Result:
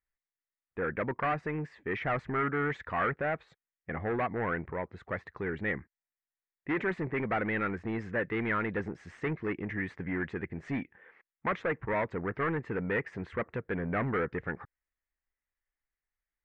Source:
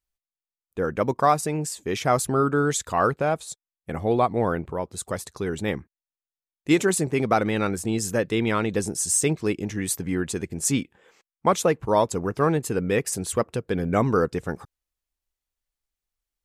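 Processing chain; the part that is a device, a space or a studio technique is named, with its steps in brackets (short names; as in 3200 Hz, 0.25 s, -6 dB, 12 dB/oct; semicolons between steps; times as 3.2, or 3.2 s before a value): overdriven synthesiser ladder filter (soft clip -22 dBFS, distortion -9 dB; ladder low-pass 2100 Hz, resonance 65%); gain +5.5 dB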